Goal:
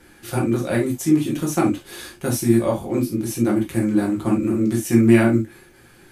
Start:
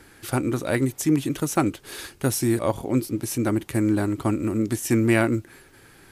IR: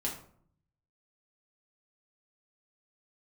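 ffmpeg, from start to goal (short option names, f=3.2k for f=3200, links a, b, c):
-filter_complex "[1:a]atrim=start_sample=2205,atrim=end_sample=3087,asetrate=37485,aresample=44100[a];[0:a][a]afir=irnorm=-1:irlink=0,volume=-3dB"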